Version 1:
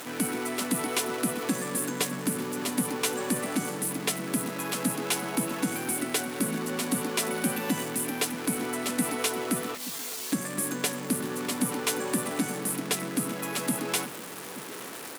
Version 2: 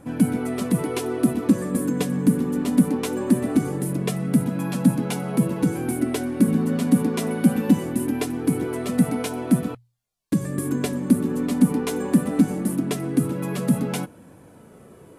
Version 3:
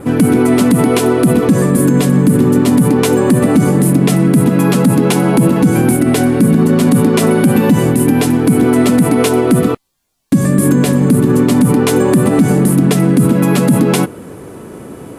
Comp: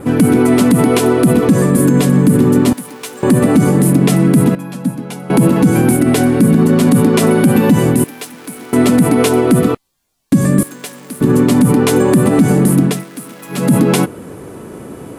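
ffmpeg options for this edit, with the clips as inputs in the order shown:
-filter_complex "[0:a]asplit=4[s0][s1][s2][s3];[2:a]asplit=6[s4][s5][s6][s7][s8][s9];[s4]atrim=end=2.732[s10];[s0]atrim=start=2.728:end=3.232[s11];[s5]atrim=start=3.228:end=4.552[s12];[1:a]atrim=start=4.548:end=5.302[s13];[s6]atrim=start=5.298:end=8.042[s14];[s1]atrim=start=8.038:end=8.732[s15];[s7]atrim=start=8.728:end=10.632[s16];[s2]atrim=start=10.628:end=11.212[s17];[s8]atrim=start=11.208:end=13.05[s18];[s3]atrim=start=12.81:end=13.72[s19];[s9]atrim=start=13.48[s20];[s10][s11]acrossfade=d=0.004:c1=hsin:c2=hsin[s21];[s21][s12]acrossfade=d=0.004:c1=hsin:c2=hsin[s22];[s22][s13]acrossfade=d=0.004:c1=hsin:c2=hsin[s23];[s23][s14]acrossfade=d=0.004:c1=hsin:c2=hsin[s24];[s24][s15]acrossfade=d=0.004:c1=hsin:c2=hsin[s25];[s25][s16]acrossfade=d=0.004:c1=hsin:c2=hsin[s26];[s26][s17]acrossfade=d=0.004:c1=hsin:c2=hsin[s27];[s27][s18]acrossfade=d=0.004:c1=hsin:c2=hsin[s28];[s28][s19]acrossfade=d=0.24:c1=tri:c2=tri[s29];[s29][s20]acrossfade=d=0.24:c1=tri:c2=tri"

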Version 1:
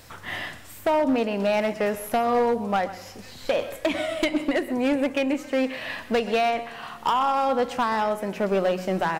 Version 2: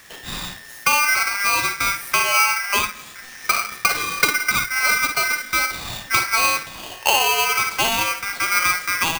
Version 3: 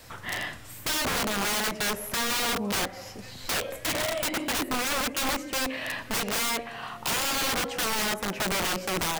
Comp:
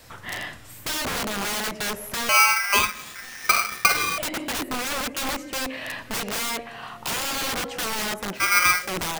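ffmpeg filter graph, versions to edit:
-filter_complex "[1:a]asplit=2[s0][s1];[2:a]asplit=3[s2][s3][s4];[s2]atrim=end=2.292[s5];[s0]atrim=start=2.288:end=4.182[s6];[s3]atrim=start=4.178:end=8.44[s7];[s1]atrim=start=8.34:end=8.9[s8];[s4]atrim=start=8.8[s9];[s5][s6]acrossfade=d=0.004:c1=hsin:c2=hsin[s10];[s10][s7]acrossfade=d=0.004:c1=hsin:c2=hsin[s11];[s11][s8]acrossfade=d=0.1:c1=tri:c2=tri[s12];[s12][s9]acrossfade=d=0.1:c1=tri:c2=tri"

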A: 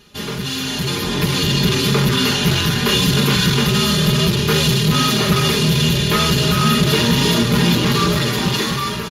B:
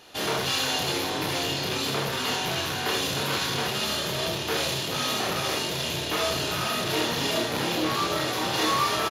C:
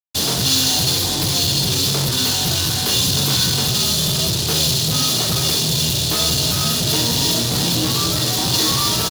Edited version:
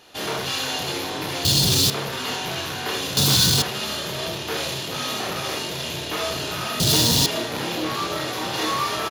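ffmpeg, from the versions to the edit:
-filter_complex "[2:a]asplit=3[s0][s1][s2];[1:a]asplit=4[s3][s4][s5][s6];[s3]atrim=end=1.452[s7];[s0]atrim=start=1.448:end=1.902[s8];[s4]atrim=start=1.898:end=3.172[s9];[s1]atrim=start=3.168:end=3.622[s10];[s5]atrim=start=3.618:end=6.802[s11];[s2]atrim=start=6.798:end=7.262[s12];[s6]atrim=start=7.258[s13];[s7][s8]acrossfade=d=0.004:c1=hsin:c2=hsin[s14];[s14][s9]acrossfade=d=0.004:c1=hsin:c2=hsin[s15];[s15][s10]acrossfade=d=0.004:c1=hsin:c2=hsin[s16];[s16][s11]acrossfade=d=0.004:c1=hsin:c2=hsin[s17];[s17][s12]acrossfade=d=0.004:c1=hsin:c2=hsin[s18];[s18][s13]acrossfade=d=0.004:c1=hsin:c2=hsin"

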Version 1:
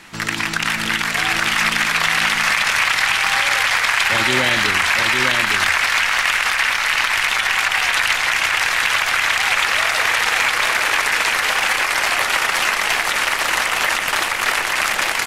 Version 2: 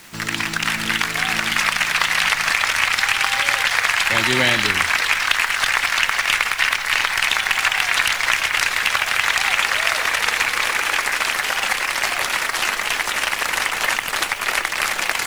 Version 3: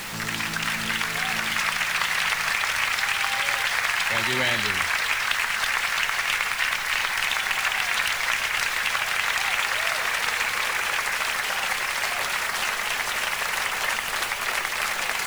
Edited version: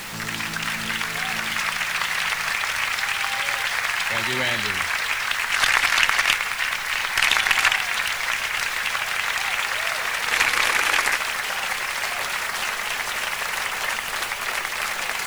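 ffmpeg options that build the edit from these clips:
-filter_complex "[1:a]asplit=3[s0][s1][s2];[2:a]asplit=4[s3][s4][s5][s6];[s3]atrim=end=5.522[s7];[s0]atrim=start=5.518:end=6.332[s8];[s4]atrim=start=6.328:end=7.162[s9];[s1]atrim=start=7.158:end=7.762[s10];[s5]atrim=start=7.758:end=10.312[s11];[s2]atrim=start=10.308:end=11.162[s12];[s6]atrim=start=11.158[s13];[s7][s8]acrossfade=d=0.004:c1=hsin:c2=hsin[s14];[s14][s9]acrossfade=d=0.004:c1=hsin:c2=hsin[s15];[s15][s10]acrossfade=d=0.004:c1=hsin:c2=hsin[s16];[s16][s11]acrossfade=d=0.004:c1=hsin:c2=hsin[s17];[s17][s12]acrossfade=d=0.004:c1=hsin:c2=hsin[s18];[s18][s13]acrossfade=d=0.004:c1=hsin:c2=hsin"

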